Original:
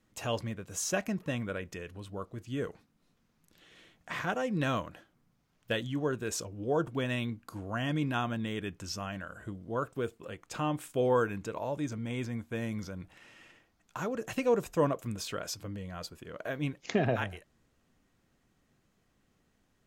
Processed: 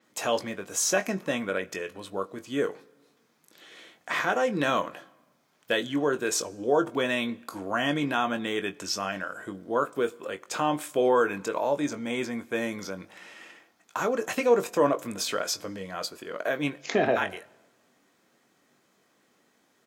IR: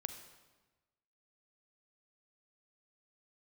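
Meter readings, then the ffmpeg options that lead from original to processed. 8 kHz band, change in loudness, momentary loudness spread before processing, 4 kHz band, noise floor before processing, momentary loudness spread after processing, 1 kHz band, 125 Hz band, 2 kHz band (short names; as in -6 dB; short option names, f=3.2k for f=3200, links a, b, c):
+8.5 dB, +6.0 dB, 13 LU, +8.0 dB, -73 dBFS, 12 LU, +7.5 dB, -5.5 dB, +8.0 dB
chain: -filter_complex "[0:a]highpass=310,bandreject=f=2.8k:w=16,asplit=2[a][b];[b]alimiter=level_in=1.5dB:limit=-24dB:level=0:latency=1:release=29,volume=-1.5dB,volume=2.5dB[c];[a][c]amix=inputs=2:normalize=0,asplit=2[d][e];[e]adelay=21,volume=-9.5dB[f];[d][f]amix=inputs=2:normalize=0,asplit=2[g][h];[1:a]atrim=start_sample=2205[i];[h][i]afir=irnorm=-1:irlink=0,volume=-12dB[j];[g][j]amix=inputs=2:normalize=0,adynamicequalizer=threshold=0.00631:dfrequency=7200:dqfactor=0.7:tfrequency=7200:tqfactor=0.7:attack=5:release=100:ratio=0.375:range=2:mode=cutabove:tftype=highshelf"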